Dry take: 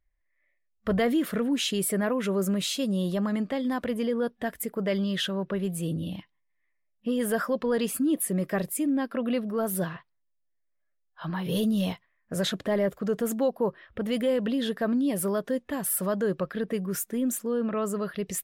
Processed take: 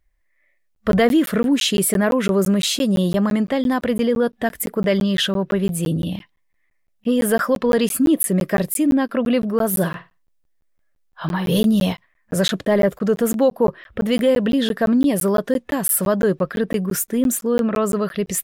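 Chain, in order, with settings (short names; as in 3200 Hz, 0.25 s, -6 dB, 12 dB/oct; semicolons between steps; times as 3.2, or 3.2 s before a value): 9.68–11.65 flutter echo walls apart 8.9 m, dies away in 0.25 s; crackling interface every 0.17 s, samples 512, zero, from 0.75; gain +9 dB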